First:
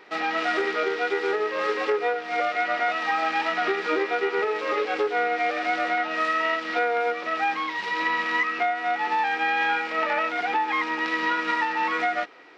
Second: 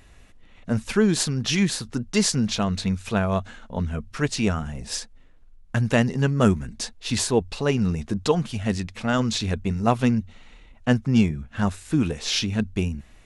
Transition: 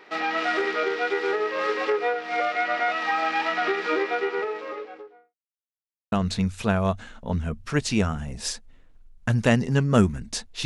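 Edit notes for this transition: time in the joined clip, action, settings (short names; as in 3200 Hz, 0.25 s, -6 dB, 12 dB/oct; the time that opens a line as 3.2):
first
3.97–5.35 studio fade out
5.35–6.12 mute
6.12 switch to second from 2.59 s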